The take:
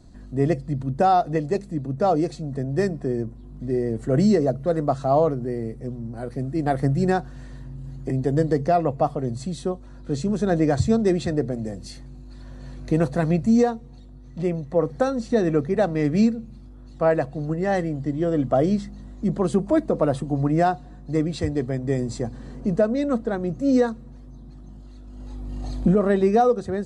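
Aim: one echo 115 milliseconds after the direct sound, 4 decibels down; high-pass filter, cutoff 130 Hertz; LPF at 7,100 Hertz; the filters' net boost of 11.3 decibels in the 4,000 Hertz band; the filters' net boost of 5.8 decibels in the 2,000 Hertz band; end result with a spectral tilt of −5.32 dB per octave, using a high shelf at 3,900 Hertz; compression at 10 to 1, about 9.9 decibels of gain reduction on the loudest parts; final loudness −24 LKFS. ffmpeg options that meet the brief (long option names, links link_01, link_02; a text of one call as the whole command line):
ffmpeg -i in.wav -af "highpass=130,lowpass=7100,equalizer=frequency=2000:width_type=o:gain=4,highshelf=frequency=3900:gain=7.5,equalizer=frequency=4000:width_type=o:gain=8,acompressor=threshold=-24dB:ratio=10,aecho=1:1:115:0.631,volume=4.5dB" out.wav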